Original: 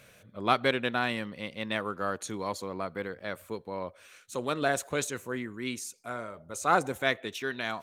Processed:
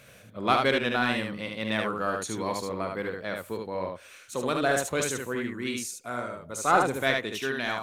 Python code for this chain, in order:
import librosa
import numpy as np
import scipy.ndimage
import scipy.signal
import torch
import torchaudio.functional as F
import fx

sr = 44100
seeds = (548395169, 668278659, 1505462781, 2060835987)

p1 = 10.0 ** (-26.5 / 20.0) * np.tanh(x / 10.0 ** (-26.5 / 20.0))
p2 = x + (p1 * librosa.db_to_amplitude(-9.5))
y = fx.room_early_taps(p2, sr, ms=(45, 74), db=(-11.5, -3.5))